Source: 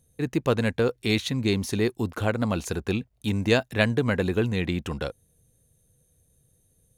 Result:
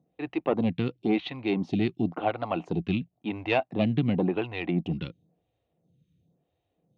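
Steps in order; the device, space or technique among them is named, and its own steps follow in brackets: vibe pedal into a guitar amplifier (photocell phaser 0.95 Hz; tube stage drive 14 dB, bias 0.55; speaker cabinet 110–3500 Hz, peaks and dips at 170 Hz +9 dB, 310 Hz +7 dB, 470 Hz -4 dB, 740 Hz +9 dB, 1600 Hz -9 dB, 2800 Hz +4 dB); gain +2.5 dB

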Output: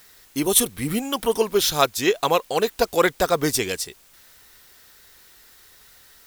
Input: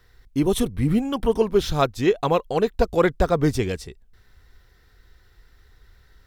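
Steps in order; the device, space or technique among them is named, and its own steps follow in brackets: turntable without a phono preamp (RIAA curve recording; white noise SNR 30 dB); gain +2.5 dB

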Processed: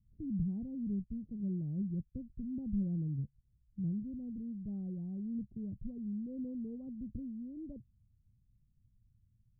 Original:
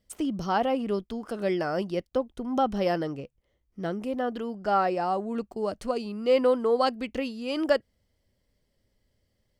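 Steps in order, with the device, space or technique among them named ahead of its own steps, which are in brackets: the neighbour's flat through the wall (LPF 180 Hz 24 dB/oct; bell 120 Hz +7 dB 0.44 oct); gain +3 dB

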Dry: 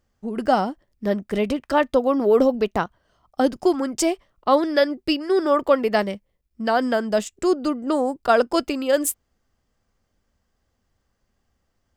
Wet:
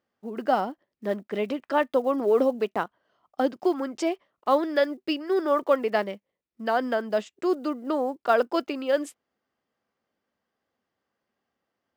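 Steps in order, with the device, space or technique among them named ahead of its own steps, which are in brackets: early digital voice recorder (BPF 250–3700 Hz; block floating point 7-bit); gain -4 dB

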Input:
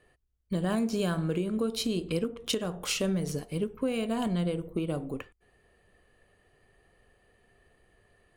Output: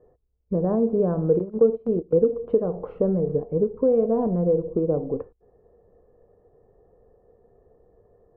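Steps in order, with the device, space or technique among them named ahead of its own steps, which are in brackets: under water (LPF 940 Hz 24 dB/oct; bell 470 Hz +11.5 dB 0.38 oct); 1.39–2.27 gate -27 dBFS, range -18 dB; gain +4.5 dB

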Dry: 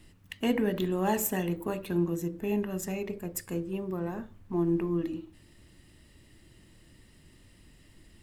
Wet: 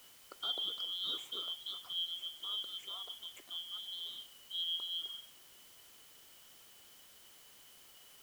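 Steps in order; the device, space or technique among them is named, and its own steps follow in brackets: split-band scrambled radio (four-band scrambler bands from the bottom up 2413; BPF 370–3400 Hz; white noise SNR 16 dB); gain -8.5 dB

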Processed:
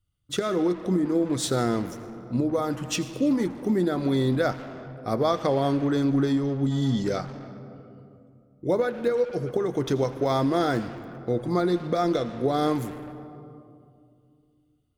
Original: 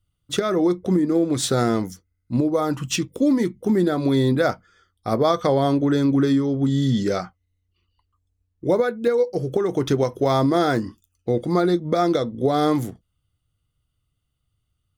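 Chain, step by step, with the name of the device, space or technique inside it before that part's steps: saturated reverb return (on a send at -7 dB: reverb RT60 2.3 s, pre-delay 74 ms + soft clip -24 dBFS, distortion -7 dB); on the sum: gain -4.5 dB

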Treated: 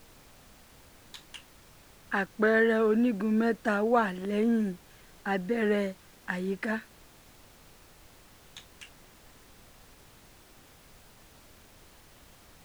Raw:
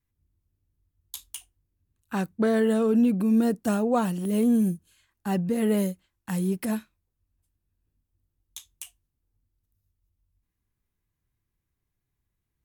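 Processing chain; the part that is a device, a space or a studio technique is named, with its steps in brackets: horn gramophone (BPF 290–3800 Hz; bell 1700 Hz +11 dB 0.53 oct; wow and flutter; pink noise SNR 23 dB)

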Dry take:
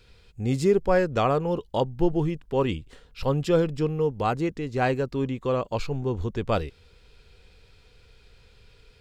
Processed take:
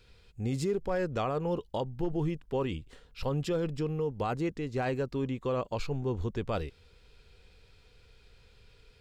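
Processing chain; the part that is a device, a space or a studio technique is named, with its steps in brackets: clipper into limiter (hard clip -12 dBFS, distortion -33 dB; limiter -18.5 dBFS, peak gain reduction 6.5 dB); gain -4 dB

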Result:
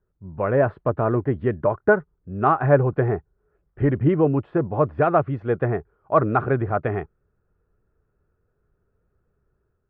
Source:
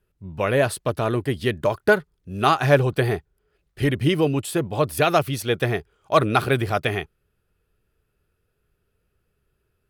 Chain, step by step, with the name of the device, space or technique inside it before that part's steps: action camera in a waterproof case (LPF 1500 Hz 24 dB/oct; AGC gain up to 4 dB; gain -2 dB; AAC 96 kbps 24000 Hz)

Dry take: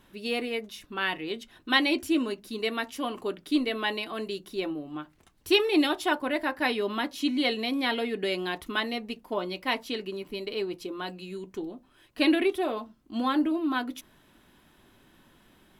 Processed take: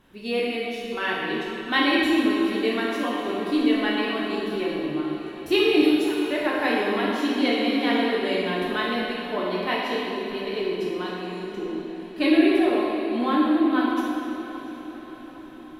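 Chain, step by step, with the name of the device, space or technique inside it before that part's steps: 5.82–6.31 differentiator; diffused feedback echo 0.693 s, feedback 54%, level -14 dB; swimming-pool hall (reverb RT60 2.4 s, pre-delay 12 ms, DRR -4.5 dB; high shelf 3400 Hz -7 dB)

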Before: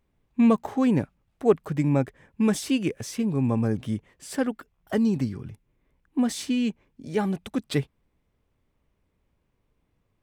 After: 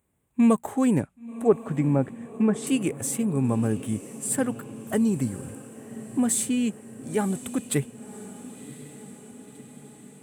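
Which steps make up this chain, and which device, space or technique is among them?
0.99–2.67 treble ducked by the level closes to 1500 Hz, closed at -17 dBFS; budget condenser microphone (HPF 76 Hz; resonant high shelf 6600 Hz +9 dB, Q 3); diffused feedback echo 1.056 s, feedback 62%, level -15.5 dB

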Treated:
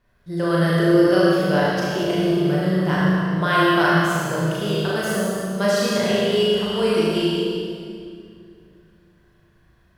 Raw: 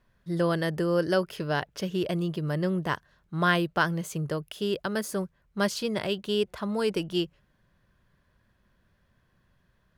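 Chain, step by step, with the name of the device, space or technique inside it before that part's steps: tunnel (flutter echo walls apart 6.5 m, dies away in 0.56 s; reverb RT60 2.4 s, pre-delay 26 ms, DRR -5.5 dB)

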